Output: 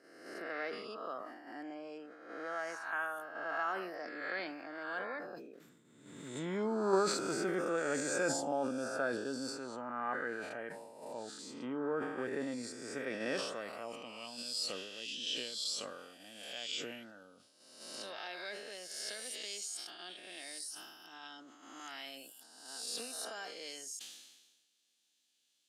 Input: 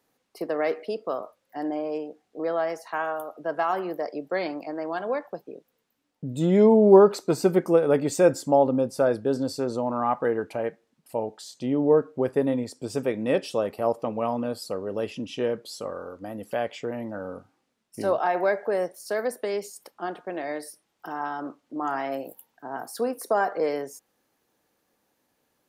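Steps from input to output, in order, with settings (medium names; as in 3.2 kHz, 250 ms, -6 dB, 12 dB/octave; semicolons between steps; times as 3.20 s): reverse spectral sustain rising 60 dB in 1.07 s; ten-band graphic EQ 125 Hz +3 dB, 250 Hz +5 dB, 500 Hz -5 dB, 1 kHz -10 dB, 2 kHz -7 dB, 8 kHz +11 dB; in parallel at -2.5 dB: level held to a coarse grid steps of 12 dB; 5.53–6.29 s: on the sum: modulation noise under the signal 23 dB; band-pass sweep 1.5 kHz -> 3.3 kHz, 13.43–14.29 s; decay stretcher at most 46 dB/s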